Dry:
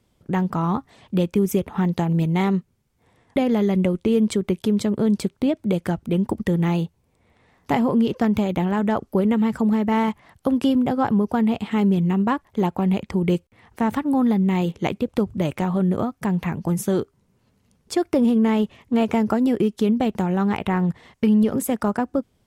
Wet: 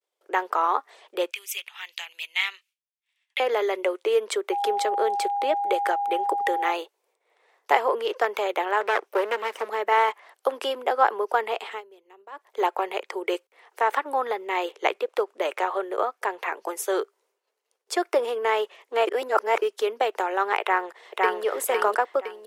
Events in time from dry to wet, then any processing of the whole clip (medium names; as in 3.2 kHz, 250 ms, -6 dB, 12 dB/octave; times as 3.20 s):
1.31–3.40 s: resonant high-pass 2.7 kHz, resonance Q 3.1
4.51–6.71 s: whistle 810 Hz -27 dBFS
8.81–9.69 s: comb filter that takes the minimum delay 0.33 ms
11.66–12.48 s: dip -20 dB, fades 0.16 s
13.82–16.57 s: treble shelf 5.7 kHz -4 dB
19.07–19.62 s: reverse
20.61–21.43 s: echo throw 510 ms, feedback 35%, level -0.5 dB
whole clip: expander -55 dBFS; steep high-pass 390 Hz 48 dB/octave; dynamic bell 1.5 kHz, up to +7 dB, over -40 dBFS, Q 0.75